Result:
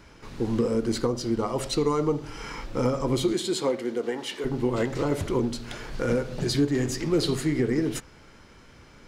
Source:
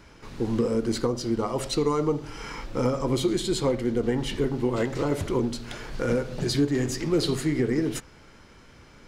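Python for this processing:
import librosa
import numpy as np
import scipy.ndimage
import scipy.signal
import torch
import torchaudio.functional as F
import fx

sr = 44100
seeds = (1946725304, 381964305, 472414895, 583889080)

y = fx.highpass(x, sr, hz=fx.line((3.32, 190.0), (4.44, 540.0)), slope=12, at=(3.32, 4.44), fade=0.02)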